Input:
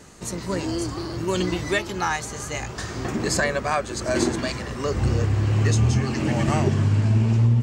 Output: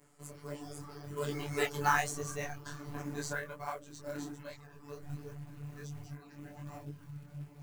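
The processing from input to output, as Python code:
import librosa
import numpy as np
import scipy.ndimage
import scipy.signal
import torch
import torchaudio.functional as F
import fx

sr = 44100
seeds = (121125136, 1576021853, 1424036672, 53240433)

p1 = fx.doppler_pass(x, sr, speed_mps=29, closest_m=8.1, pass_at_s=1.97)
p2 = fx.dereverb_blind(p1, sr, rt60_s=0.99)
p3 = fx.hum_notches(p2, sr, base_hz=60, count=9)
p4 = fx.robotise(p3, sr, hz=145.0)
p5 = fx.high_shelf(p4, sr, hz=8600.0, db=3.0)
p6 = fx.rider(p5, sr, range_db=4, speed_s=2.0)
p7 = p5 + (p6 * librosa.db_to_amplitude(-2.0))
p8 = fx.quant_float(p7, sr, bits=2)
p9 = fx.peak_eq(p8, sr, hz=4400.0, db=-7.0, octaves=1.9)
y = fx.detune_double(p9, sr, cents=46)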